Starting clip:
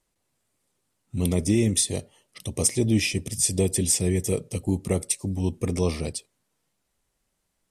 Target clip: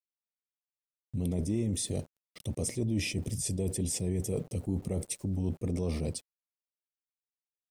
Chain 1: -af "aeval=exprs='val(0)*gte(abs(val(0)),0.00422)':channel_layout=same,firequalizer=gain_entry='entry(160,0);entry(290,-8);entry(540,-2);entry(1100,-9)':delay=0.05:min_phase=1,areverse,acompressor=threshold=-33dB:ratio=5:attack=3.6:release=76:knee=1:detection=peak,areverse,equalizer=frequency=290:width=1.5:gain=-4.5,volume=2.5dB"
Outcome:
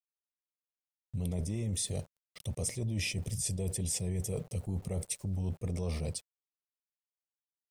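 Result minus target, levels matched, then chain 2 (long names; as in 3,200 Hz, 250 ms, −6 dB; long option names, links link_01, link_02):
250 Hz band −4.0 dB
-af "aeval=exprs='val(0)*gte(abs(val(0)),0.00422)':channel_layout=same,firequalizer=gain_entry='entry(160,0);entry(290,-8);entry(540,-2);entry(1100,-9)':delay=0.05:min_phase=1,areverse,acompressor=threshold=-33dB:ratio=5:attack=3.6:release=76:knee=1:detection=peak,areverse,equalizer=frequency=290:width=1.5:gain=7,volume=2.5dB"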